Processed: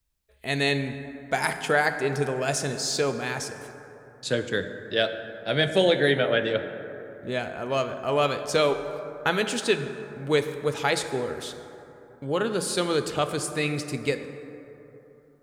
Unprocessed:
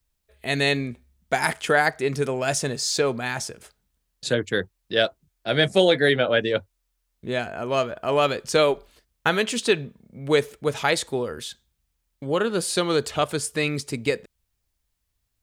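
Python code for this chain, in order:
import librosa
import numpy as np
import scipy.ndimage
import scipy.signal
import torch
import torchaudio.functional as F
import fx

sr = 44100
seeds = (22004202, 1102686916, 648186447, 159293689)

y = fx.rev_plate(x, sr, seeds[0], rt60_s=3.3, hf_ratio=0.35, predelay_ms=0, drr_db=8.0)
y = F.gain(torch.from_numpy(y), -3.0).numpy()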